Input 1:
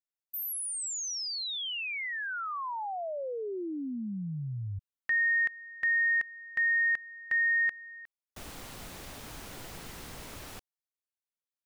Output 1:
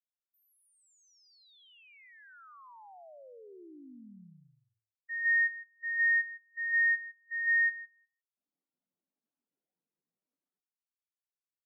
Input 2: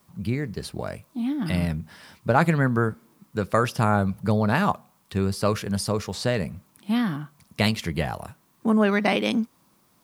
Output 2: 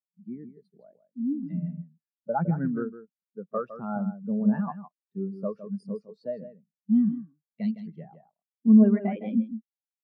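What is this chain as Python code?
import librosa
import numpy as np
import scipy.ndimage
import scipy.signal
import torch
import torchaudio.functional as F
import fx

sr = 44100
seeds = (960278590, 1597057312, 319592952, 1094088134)

p1 = scipy.signal.sosfilt(scipy.signal.butter(4, 160.0, 'highpass', fs=sr, output='sos'), x)
p2 = fx.leveller(p1, sr, passes=1)
p3 = p2 + fx.echo_single(p2, sr, ms=160, db=-5.0, dry=0)
p4 = fx.spectral_expand(p3, sr, expansion=2.5)
y = p4 * librosa.db_to_amplitude(-3.5)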